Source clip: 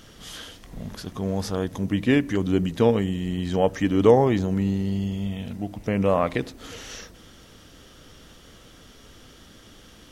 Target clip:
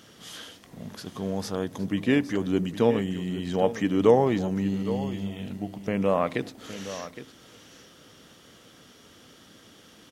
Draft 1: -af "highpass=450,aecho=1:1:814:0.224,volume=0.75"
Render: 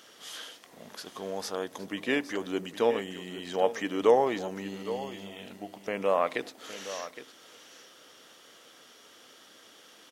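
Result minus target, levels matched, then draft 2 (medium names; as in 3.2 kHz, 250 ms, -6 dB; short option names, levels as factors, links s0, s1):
125 Hz band -11.5 dB
-af "highpass=130,aecho=1:1:814:0.224,volume=0.75"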